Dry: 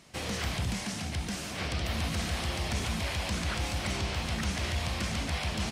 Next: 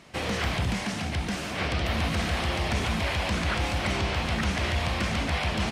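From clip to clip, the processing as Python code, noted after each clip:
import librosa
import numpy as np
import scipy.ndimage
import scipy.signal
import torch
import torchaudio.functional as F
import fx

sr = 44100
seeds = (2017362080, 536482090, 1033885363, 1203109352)

y = fx.bass_treble(x, sr, bass_db=-3, treble_db=-9)
y = y * librosa.db_to_amplitude(7.0)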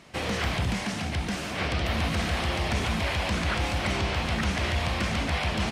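y = x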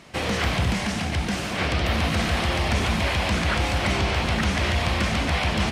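y = x + 10.0 ** (-12.0 / 20.0) * np.pad(x, (int(237 * sr / 1000.0), 0))[:len(x)]
y = y * librosa.db_to_amplitude(4.0)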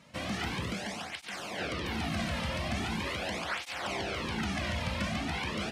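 y = fx.flanger_cancel(x, sr, hz=0.41, depth_ms=2.8)
y = y * librosa.db_to_amplitude(-7.0)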